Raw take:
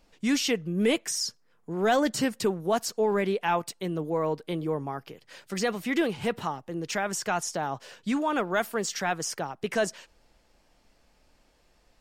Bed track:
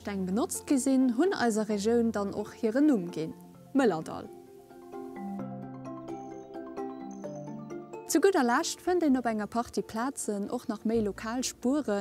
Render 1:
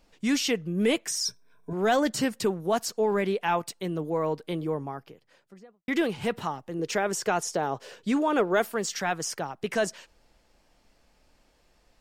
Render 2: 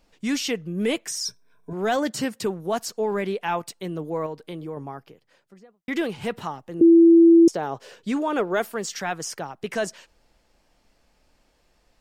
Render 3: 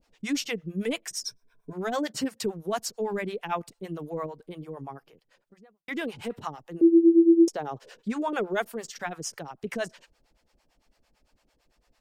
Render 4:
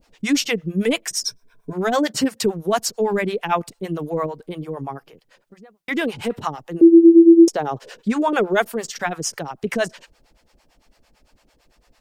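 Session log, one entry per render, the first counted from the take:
1.25–1.73 s: rippled EQ curve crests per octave 1.6, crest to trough 16 dB; 4.57–5.88 s: studio fade out; 6.79–8.67 s: peaking EQ 430 Hz +8.5 dB
1.96–2.46 s: high-pass 47 Hz; 4.26–4.77 s: compression 1.5:1, threshold -37 dBFS; 6.81–7.48 s: bleep 334 Hz -9 dBFS
harmonic tremolo 8.9 Hz, depth 100%, crossover 510 Hz
trim +9.5 dB; peak limiter -3 dBFS, peak gain reduction 2 dB

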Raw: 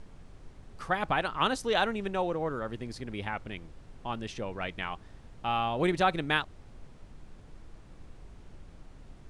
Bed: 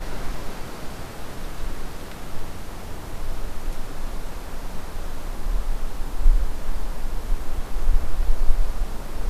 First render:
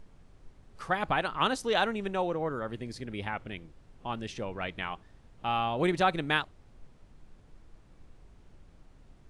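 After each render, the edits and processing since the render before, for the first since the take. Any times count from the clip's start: noise print and reduce 6 dB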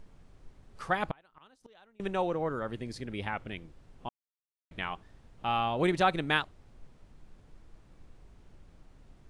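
1.11–2.00 s: inverted gate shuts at -26 dBFS, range -32 dB; 4.09–4.71 s: mute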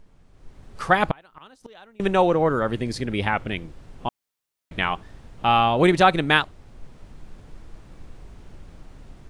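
level rider gain up to 12 dB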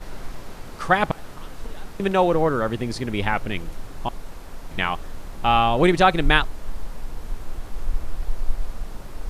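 add bed -5.5 dB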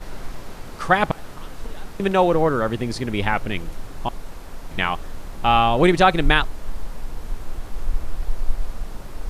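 trim +1.5 dB; peak limiter -3 dBFS, peak gain reduction 3 dB

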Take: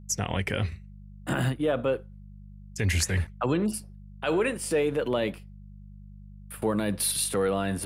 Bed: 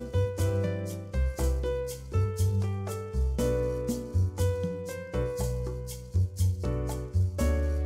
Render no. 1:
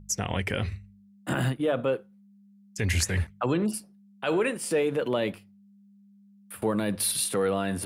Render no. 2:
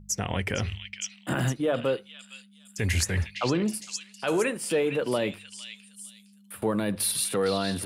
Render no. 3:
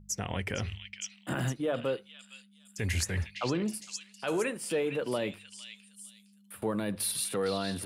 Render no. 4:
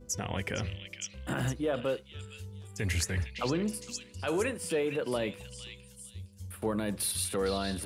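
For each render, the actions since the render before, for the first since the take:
de-hum 50 Hz, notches 3
repeats whose band climbs or falls 460 ms, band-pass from 3.5 kHz, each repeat 0.7 oct, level -1.5 dB
trim -5 dB
add bed -18 dB

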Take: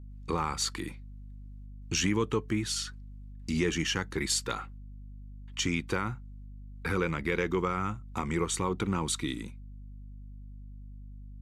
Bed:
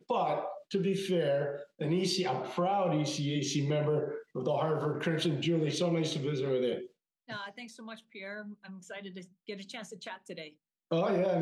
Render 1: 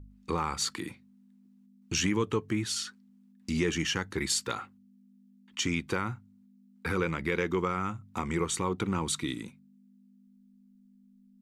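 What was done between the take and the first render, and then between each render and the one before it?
de-hum 50 Hz, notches 3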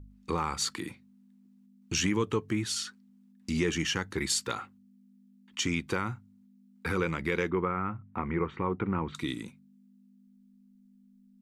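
7.50–9.15 s: low-pass 2.2 kHz 24 dB/octave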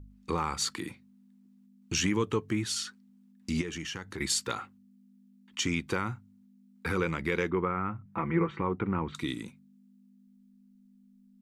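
3.61–4.20 s: compression 2.5:1, threshold -37 dBFS; 8.05–8.61 s: comb 6 ms, depth 79%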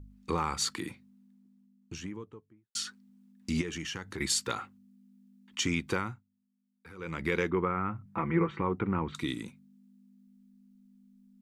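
0.85–2.75 s: studio fade out; 5.97–7.25 s: dip -19 dB, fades 0.27 s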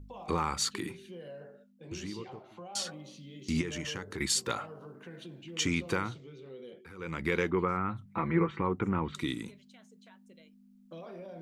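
add bed -16.5 dB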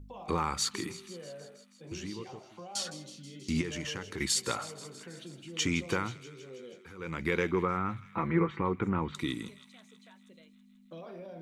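feedback echo behind a high-pass 161 ms, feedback 70%, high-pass 2.4 kHz, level -14 dB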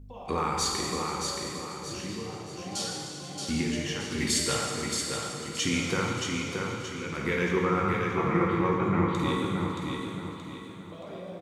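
feedback delay 625 ms, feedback 39%, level -4.5 dB; plate-style reverb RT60 2.2 s, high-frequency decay 0.9×, DRR -1.5 dB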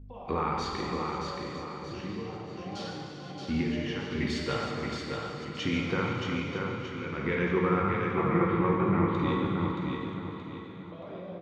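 chunks repeated in reverse 237 ms, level -10.5 dB; distance through air 260 m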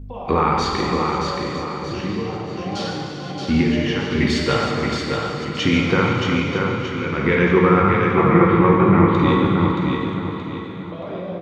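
trim +12 dB; peak limiter -2 dBFS, peak gain reduction 1 dB

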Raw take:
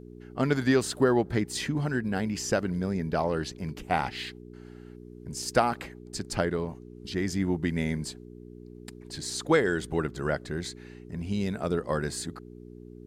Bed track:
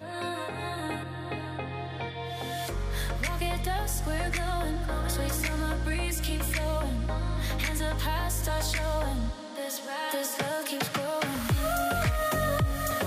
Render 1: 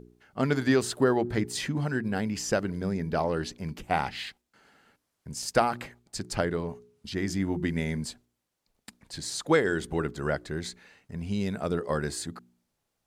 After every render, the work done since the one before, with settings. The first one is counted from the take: de-hum 60 Hz, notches 7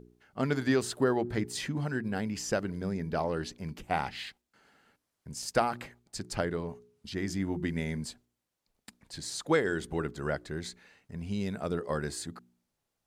trim -3.5 dB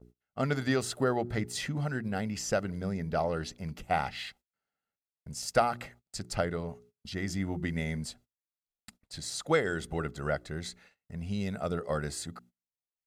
gate -56 dBFS, range -27 dB; comb 1.5 ms, depth 38%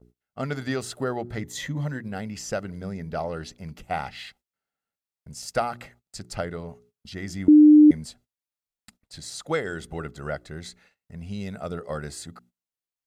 1.43–2.04 s: rippled EQ curve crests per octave 1.1, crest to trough 9 dB; 7.48–7.91 s: bleep 301 Hz -8.5 dBFS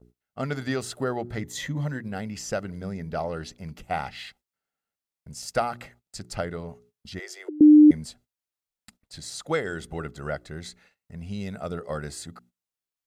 7.19–7.61 s: steep high-pass 360 Hz 96 dB/octave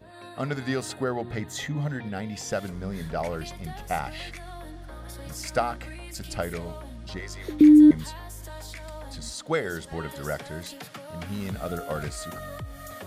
add bed track -11 dB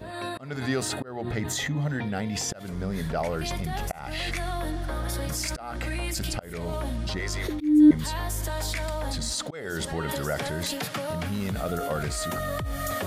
in parallel at -0.5 dB: compressor with a negative ratio -40 dBFS, ratio -1; on the sum: slow attack 283 ms

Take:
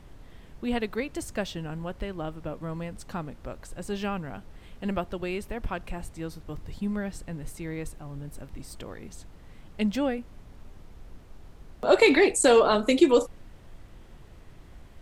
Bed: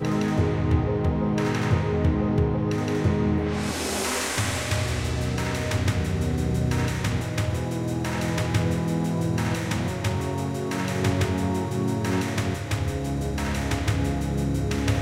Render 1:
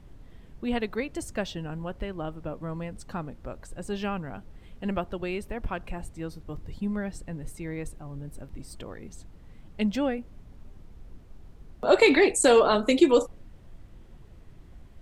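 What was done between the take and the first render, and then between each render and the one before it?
noise reduction 6 dB, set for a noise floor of -50 dBFS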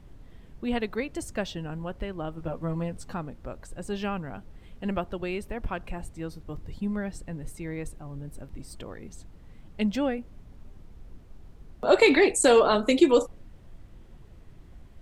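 2.36–3.14 s: doubling 12 ms -2.5 dB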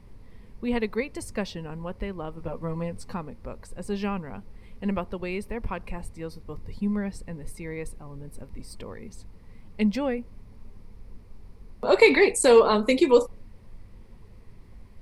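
rippled EQ curve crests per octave 0.89, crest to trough 7 dB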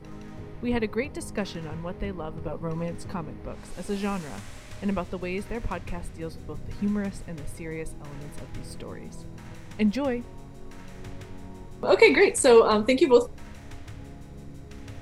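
add bed -19 dB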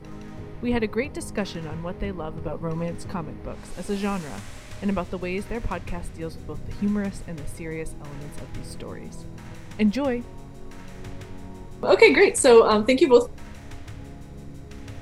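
trim +2.5 dB

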